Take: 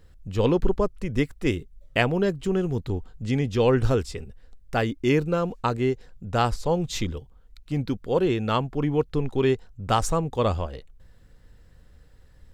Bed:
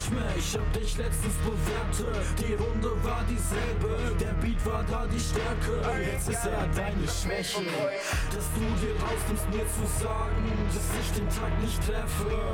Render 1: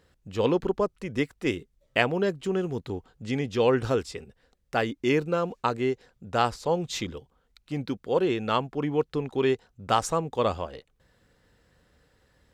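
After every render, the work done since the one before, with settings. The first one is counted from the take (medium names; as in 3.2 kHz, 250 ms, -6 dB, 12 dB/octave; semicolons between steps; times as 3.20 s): high-pass 280 Hz 6 dB/octave; treble shelf 9.6 kHz -6 dB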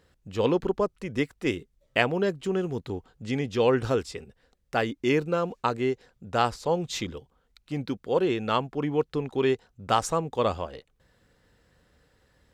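no audible change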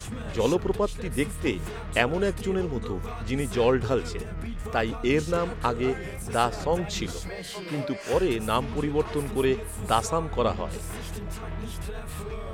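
add bed -6 dB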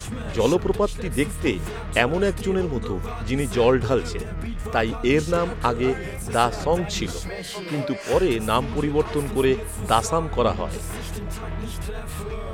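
trim +4 dB; peak limiter -2 dBFS, peak gain reduction 1 dB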